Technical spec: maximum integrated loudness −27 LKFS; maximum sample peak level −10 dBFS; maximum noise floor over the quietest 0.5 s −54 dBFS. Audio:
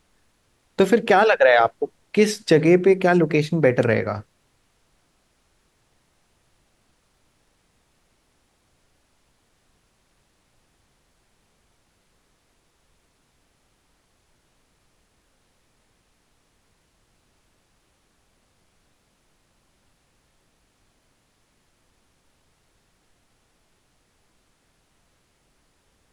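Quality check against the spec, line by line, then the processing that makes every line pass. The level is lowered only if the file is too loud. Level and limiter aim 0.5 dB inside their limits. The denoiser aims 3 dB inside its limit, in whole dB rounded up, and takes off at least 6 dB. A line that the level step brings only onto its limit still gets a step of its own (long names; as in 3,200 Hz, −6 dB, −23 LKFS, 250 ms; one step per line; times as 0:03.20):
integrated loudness −18.5 LKFS: out of spec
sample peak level −4.5 dBFS: out of spec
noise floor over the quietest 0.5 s −66 dBFS: in spec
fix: level −9 dB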